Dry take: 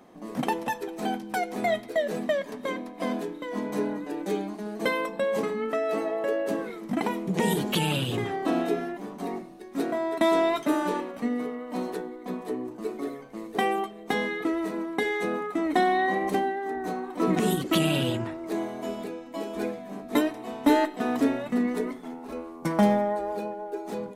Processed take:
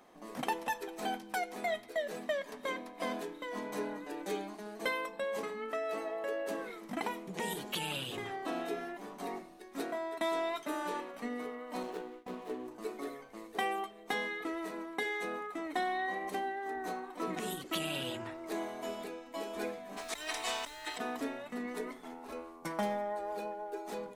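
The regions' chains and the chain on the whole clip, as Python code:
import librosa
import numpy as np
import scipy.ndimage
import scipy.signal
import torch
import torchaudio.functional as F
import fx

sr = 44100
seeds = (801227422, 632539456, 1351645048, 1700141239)

y = fx.chain(x, sr, fx.median_filter(points=25),
    fx.gate_hold(open_db=-30.0, close_db=-36.0, hold_ms=71.0, range_db=-21, attack_ms=1.4, release_ms=100.0), at=(11.83, 12.68))
y = fx.weighting(y, sr, curve='ITU-R 468', at=(19.96, 20.97), fade=0.02)
y = fx.over_compress(y, sr, threshold_db=-37.0, ratio=-1.0, at=(19.96, 20.97), fade=0.02)
y = fx.dmg_noise_colour(y, sr, seeds[0], colour='pink', level_db=-54.0, at=(19.96, 20.97), fade=0.02)
y = fx.rider(y, sr, range_db=3, speed_s=0.5)
y = fx.peak_eq(y, sr, hz=160.0, db=-10.5, octaves=3.0)
y = fx.hum_notches(y, sr, base_hz=60, count=2)
y = y * 10.0 ** (-5.0 / 20.0)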